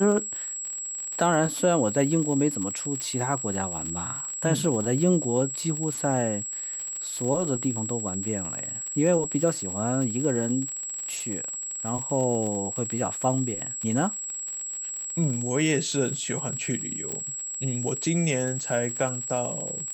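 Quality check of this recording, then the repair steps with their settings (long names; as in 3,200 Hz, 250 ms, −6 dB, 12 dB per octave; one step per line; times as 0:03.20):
surface crackle 55 per second −31 dBFS
whistle 7,700 Hz −31 dBFS
0:03.00: click
0:17.12: click −17 dBFS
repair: click removal
notch filter 7,700 Hz, Q 30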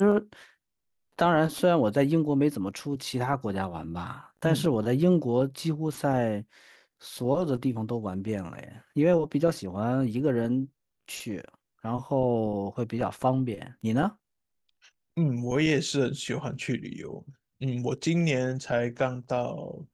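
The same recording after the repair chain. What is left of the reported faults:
none of them is left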